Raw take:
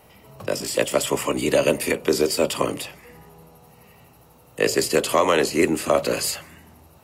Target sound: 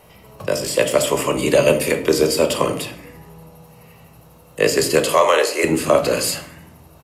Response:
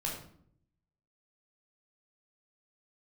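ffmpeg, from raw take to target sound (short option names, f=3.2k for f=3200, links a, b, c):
-filter_complex "[0:a]asettb=1/sr,asplit=3[a][b][c];[a]atrim=end=5.024[d];[b]atrim=start=5.02:end=5.64,asetpts=PTS-STARTPTS,afade=t=in:d=0.004:c=qsin,afade=t=out:st=0.616:d=0.004:c=qsin,highpass=f=430:w=0.5412,highpass=f=430:w=1.3066[e];[c]atrim=start=5.636[f];[d][e]acrossfade=d=0.004:c1=hsin:c2=qsin[g];[g][f]acrossfade=d=0.004:c1=qsin:c2=hsin,asplit=2[h][i];[1:a]atrim=start_sample=2205[j];[i][j]afir=irnorm=-1:irlink=0,volume=-5dB[k];[h][k]amix=inputs=2:normalize=0,aresample=32000,aresample=44100"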